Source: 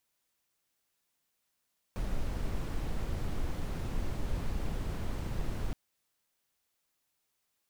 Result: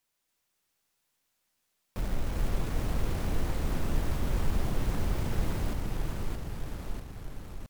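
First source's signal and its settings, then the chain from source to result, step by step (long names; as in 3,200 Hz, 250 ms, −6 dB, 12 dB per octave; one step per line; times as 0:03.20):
noise brown, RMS −32.5 dBFS 3.77 s
stylus tracing distortion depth 0.32 ms
in parallel at −7 dB: bit reduction 7 bits
on the sum: delay with pitch and tempo change per echo 282 ms, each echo −1 semitone, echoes 3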